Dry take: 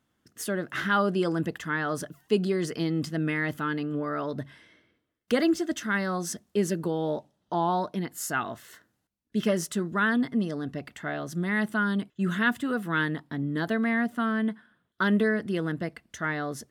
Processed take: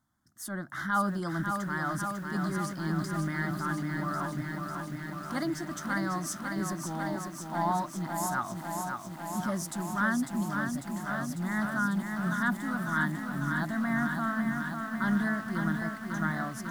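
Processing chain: transient shaper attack -7 dB, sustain -2 dB; fixed phaser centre 1100 Hz, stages 4; lo-fi delay 0.548 s, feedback 80%, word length 9-bit, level -5 dB

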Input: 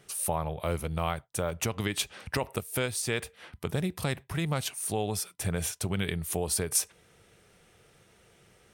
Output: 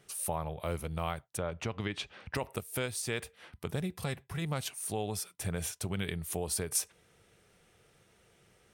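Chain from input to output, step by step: 1.37–2.35 LPF 3900 Hz 12 dB/oct; 3.8–4.42 notch comb 310 Hz; gain -4.5 dB

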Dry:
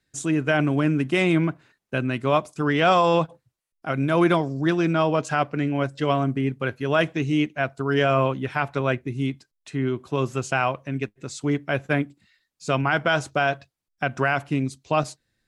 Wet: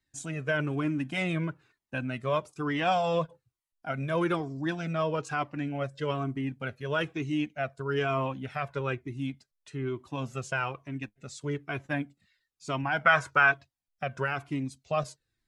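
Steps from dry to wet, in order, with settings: 13.05–13.52 band shelf 1400 Hz +12.5 dB; cascading flanger falling 1.1 Hz; gain -3.5 dB

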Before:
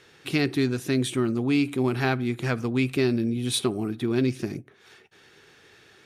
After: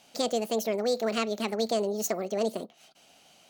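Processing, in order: speed mistake 45 rpm record played at 78 rpm; gain -4 dB

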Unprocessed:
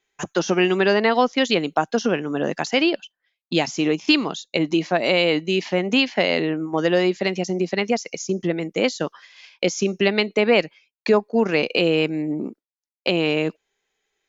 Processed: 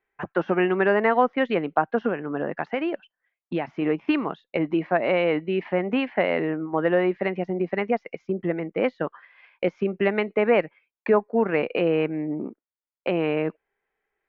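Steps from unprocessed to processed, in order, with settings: LPF 2000 Hz 24 dB/oct; bell 220 Hz -4 dB 2.2 oct; 2.08–3.82 compressor, threshold -22 dBFS, peak gain reduction 5.5 dB

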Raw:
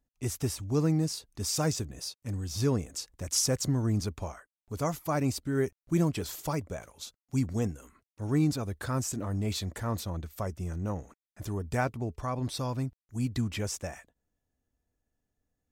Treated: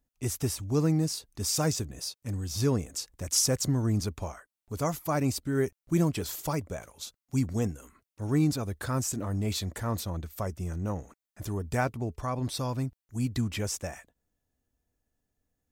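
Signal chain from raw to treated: high shelf 9400 Hz +4.5 dB; gain +1 dB

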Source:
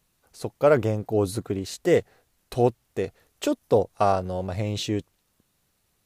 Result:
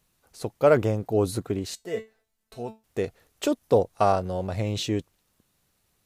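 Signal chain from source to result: 1.75–2.84 resonator 220 Hz, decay 0.23 s, harmonics all, mix 90%

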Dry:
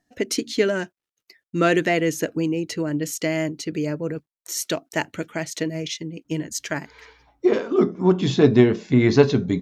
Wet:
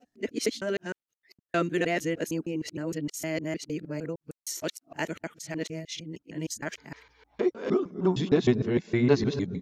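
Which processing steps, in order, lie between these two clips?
local time reversal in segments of 0.154 s; gain -7.5 dB

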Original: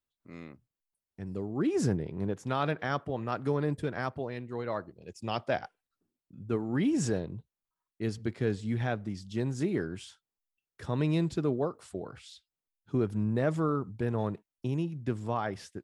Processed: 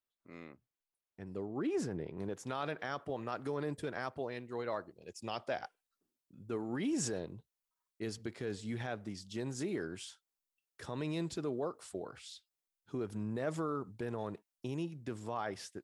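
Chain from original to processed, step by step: limiter -23.5 dBFS, peak gain reduction 7 dB; tone controls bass -8 dB, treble -5 dB, from 2.17 s treble +4 dB; gain -2 dB

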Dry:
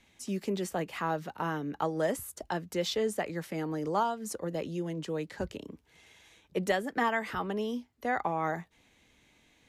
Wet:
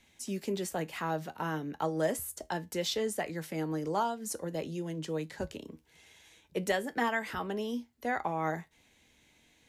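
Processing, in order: high shelf 4800 Hz +5.5 dB; notch 1200 Hz, Q 14; resonator 79 Hz, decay 0.2 s, harmonics all, mix 50%; gain +1.5 dB

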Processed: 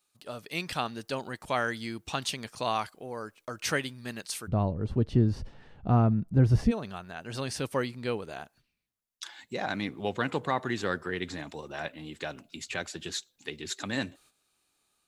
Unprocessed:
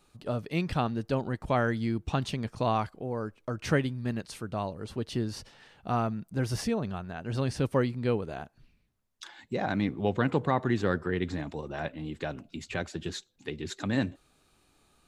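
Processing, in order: tilt +3.5 dB/oct, from 4.47 s -3.5 dB/oct, from 6.7 s +2.5 dB/oct; gate -59 dBFS, range -10 dB; AGC gain up to 4.5 dB; gain -5 dB

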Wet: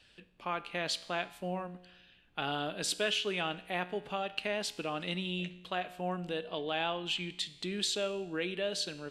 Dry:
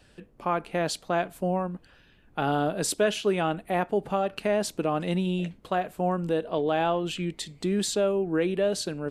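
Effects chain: bell 3200 Hz +15 dB 1.9 oct; resonator 60 Hz, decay 0.95 s, harmonics all, mix 50%; gain -7 dB

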